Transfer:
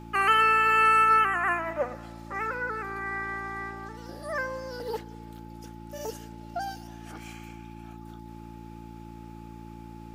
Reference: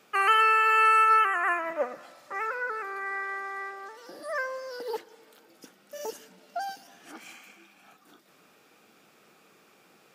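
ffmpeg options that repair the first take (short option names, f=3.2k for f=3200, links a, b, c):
-af "bandreject=f=56.9:t=h:w=4,bandreject=f=113.8:t=h:w=4,bandreject=f=170.7:t=h:w=4,bandreject=f=227.6:t=h:w=4,bandreject=f=284.5:t=h:w=4,bandreject=f=341.4:t=h:w=4,bandreject=f=860:w=30"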